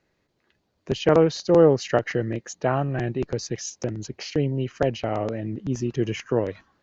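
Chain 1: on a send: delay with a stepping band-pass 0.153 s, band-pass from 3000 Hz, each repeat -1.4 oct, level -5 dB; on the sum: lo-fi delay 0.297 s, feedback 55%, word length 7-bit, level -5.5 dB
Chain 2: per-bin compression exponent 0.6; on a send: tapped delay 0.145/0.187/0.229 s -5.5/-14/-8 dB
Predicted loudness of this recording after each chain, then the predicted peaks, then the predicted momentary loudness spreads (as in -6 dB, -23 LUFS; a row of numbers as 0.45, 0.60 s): -23.0, -19.5 LUFS; -4.0, -2.0 dBFS; 12, 8 LU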